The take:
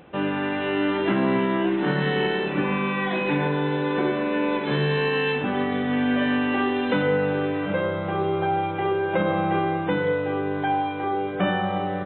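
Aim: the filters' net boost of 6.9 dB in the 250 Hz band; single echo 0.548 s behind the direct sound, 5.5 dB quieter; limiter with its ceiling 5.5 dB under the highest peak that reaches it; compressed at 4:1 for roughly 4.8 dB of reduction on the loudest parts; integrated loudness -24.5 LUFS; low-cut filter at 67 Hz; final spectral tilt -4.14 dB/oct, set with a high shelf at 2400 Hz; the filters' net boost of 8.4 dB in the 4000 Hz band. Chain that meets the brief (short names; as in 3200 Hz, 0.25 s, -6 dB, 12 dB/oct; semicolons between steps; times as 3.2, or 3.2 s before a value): HPF 67 Hz; bell 250 Hz +8.5 dB; high shelf 2400 Hz +4 dB; bell 4000 Hz +8.5 dB; compressor 4:1, threshold -18 dBFS; limiter -15.5 dBFS; echo 0.548 s -5.5 dB; gain -2 dB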